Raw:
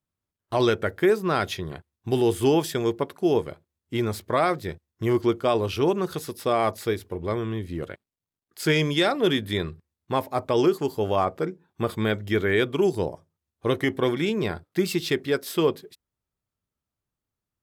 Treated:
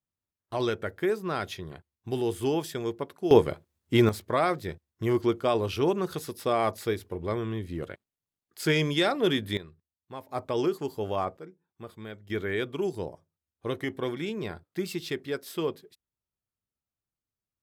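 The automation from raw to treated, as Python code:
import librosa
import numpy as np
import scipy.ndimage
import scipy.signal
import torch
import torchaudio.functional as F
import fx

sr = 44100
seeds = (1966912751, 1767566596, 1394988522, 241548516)

y = fx.gain(x, sr, db=fx.steps((0.0, -7.0), (3.31, 5.0), (4.09, -3.0), (9.57, -16.0), (10.29, -6.5), (11.37, -17.0), (12.3, -8.0)))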